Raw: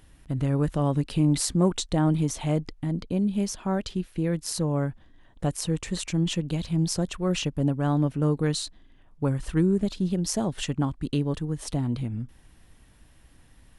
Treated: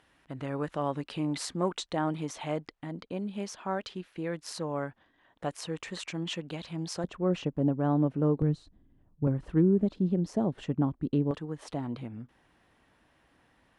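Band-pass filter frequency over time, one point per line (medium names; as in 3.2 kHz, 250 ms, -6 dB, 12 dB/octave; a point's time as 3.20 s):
band-pass filter, Q 0.54
1.3 kHz
from 7.04 s 440 Hz
from 8.42 s 130 Hz
from 9.27 s 330 Hz
from 11.31 s 900 Hz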